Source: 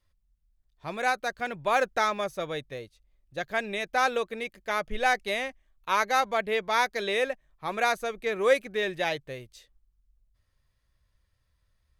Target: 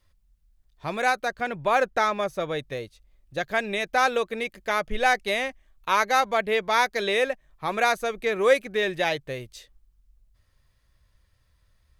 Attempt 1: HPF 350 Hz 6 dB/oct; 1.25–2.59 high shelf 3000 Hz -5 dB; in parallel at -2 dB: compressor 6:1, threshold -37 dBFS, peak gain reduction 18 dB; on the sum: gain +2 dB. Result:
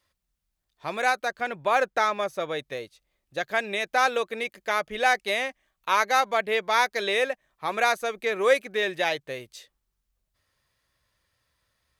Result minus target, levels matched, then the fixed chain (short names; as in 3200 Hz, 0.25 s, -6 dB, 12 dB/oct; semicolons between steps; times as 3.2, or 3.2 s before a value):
250 Hz band -4.0 dB
1.25–2.59 high shelf 3000 Hz -5 dB; in parallel at -2 dB: compressor 6:1, threshold -37 dBFS, peak gain reduction 19 dB; on the sum: gain +2 dB